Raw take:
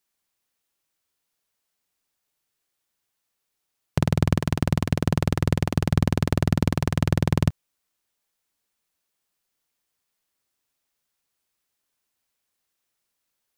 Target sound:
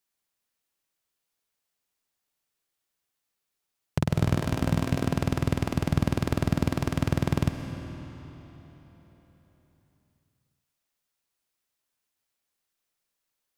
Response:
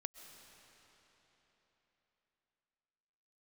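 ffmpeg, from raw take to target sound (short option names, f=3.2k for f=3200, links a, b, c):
-filter_complex "[0:a]asettb=1/sr,asplit=3[a][b][c];[a]atrim=end=4.154[d];[b]atrim=start=4.15:end=5.06,asetpts=PTS-STARTPTS,afade=t=in:d=0.004:c=qsin,afade=t=out:st=0.906:d=0.004:c=qsin,asplit=2[e][f];[f]adelay=19,volume=-5.5dB[g];[e][g]amix=inputs=2:normalize=0,atrim=end_sample=40131[h];[c]atrim=start=5.056[i];[d][h]acrossfade=d=0.004:c1=hsin:c2=qsin[j];[j][i]acrossfade=d=0.004:c1=qsin:c2=hsin[k];[1:a]atrim=start_sample=2205[l];[k][l]afir=irnorm=-1:irlink=0"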